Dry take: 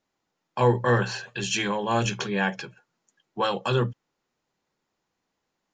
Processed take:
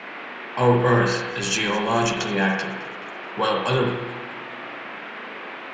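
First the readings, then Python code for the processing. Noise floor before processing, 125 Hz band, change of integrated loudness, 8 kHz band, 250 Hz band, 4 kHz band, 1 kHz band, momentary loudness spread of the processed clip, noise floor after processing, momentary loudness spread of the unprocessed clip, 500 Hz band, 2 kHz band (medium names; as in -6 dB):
-81 dBFS, +2.5 dB, +3.0 dB, +4.0 dB, +5.0 dB, +4.5 dB, +4.5 dB, 15 LU, -36 dBFS, 13 LU, +4.0 dB, +5.5 dB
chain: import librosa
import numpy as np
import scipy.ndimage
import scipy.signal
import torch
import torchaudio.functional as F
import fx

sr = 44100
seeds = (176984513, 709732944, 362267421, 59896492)

p1 = fx.high_shelf(x, sr, hz=6600.0, db=4.5)
p2 = 10.0 ** (-18.5 / 20.0) * np.tanh(p1 / 10.0 ** (-18.5 / 20.0))
p3 = p1 + (p2 * librosa.db_to_amplitude(-12.0))
p4 = fx.dmg_noise_band(p3, sr, seeds[0], low_hz=210.0, high_hz=2500.0, level_db=-38.0)
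p5 = fx.echo_feedback(p4, sr, ms=214, feedback_pct=57, wet_db=-19.5)
y = fx.rev_spring(p5, sr, rt60_s=1.0, pass_ms=(37, 57), chirp_ms=40, drr_db=1.5)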